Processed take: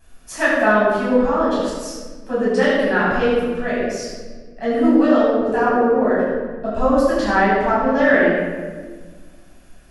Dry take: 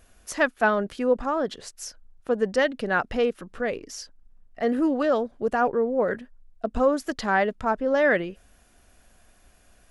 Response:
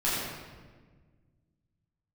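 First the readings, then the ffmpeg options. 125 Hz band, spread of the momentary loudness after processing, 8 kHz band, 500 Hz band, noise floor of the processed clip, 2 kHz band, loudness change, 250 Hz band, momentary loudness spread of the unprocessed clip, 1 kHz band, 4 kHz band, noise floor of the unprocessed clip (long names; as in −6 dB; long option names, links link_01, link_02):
+9.5 dB, 14 LU, +4.0 dB, +7.0 dB, −44 dBFS, +7.0 dB, +7.0 dB, +10.0 dB, 15 LU, +7.0 dB, +5.5 dB, −59 dBFS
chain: -filter_complex "[1:a]atrim=start_sample=2205[link_01];[0:a][link_01]afir=irnorm=-1:irlink=0,volume=-4dB"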